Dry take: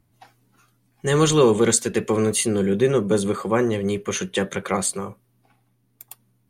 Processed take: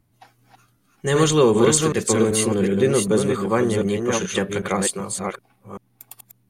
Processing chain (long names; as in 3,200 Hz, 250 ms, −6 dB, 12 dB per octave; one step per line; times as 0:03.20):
delay that plays each chunk backwards 385 ms, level −4 dB